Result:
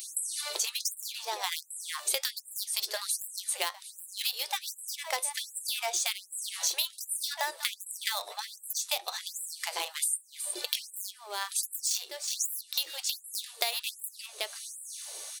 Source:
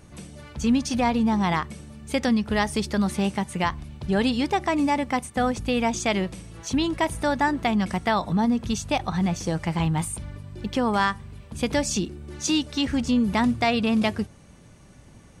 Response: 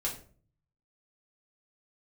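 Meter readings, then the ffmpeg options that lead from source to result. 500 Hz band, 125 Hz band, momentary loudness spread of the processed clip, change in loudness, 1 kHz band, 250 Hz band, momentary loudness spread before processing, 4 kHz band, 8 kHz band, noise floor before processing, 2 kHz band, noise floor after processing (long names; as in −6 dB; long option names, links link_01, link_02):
−16.0 dB, below −40 dB, 8 LU, −8.0 dB, −13.5 dB, below −40 dB, 11 LU, +0.5 dB, +4.5 dB, −50 dBFS, −8.5 dB, −54 dBFS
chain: -filter_complex "[0:a]flanger=delay=8.9:depth=1.7:regen=69:speed=1.3:shape=triangular,equalizer=frequency=160:width_type=o:width=0.67:gain=4,equalizer=frequency=630:width_type=o:width=0.67:gain=5,equalizer=frequency=4000:width_type=o:width=0.67:gain=11,asplit=2[link_01][link_02];[link_02]adynamicsmooth=sensitivity=4.5:basefreq=1100,volume=-1dB[link_03];[link_01][link_03]amix=inputs=2:normalize=0,highshelf=frequency=9200:gain=11.5,asplit=2[link_04][link_05];[link_05]adelay=367.3,volume=-14dB,highshelf=frequency=4000:gain=-8.27[link_06];[link_04][link_06]amix=inputs=2:normalize=0,crystalizer=i=7.5:c=0,acompressor=threshold=-29dB:ratio=12,afftfilt=real='re*gte(b*sr/1024,340*pow(7500/340,0.5+0.5*sin(2*PI*1.3*pts/sr)))':imag='im*gte(b*sr/1024,340*pow(7500/340,0.5+0.5*sin(2*PI*1.3*pts/sr)))':win_size=1024:overlap=0.75,volume=2dB"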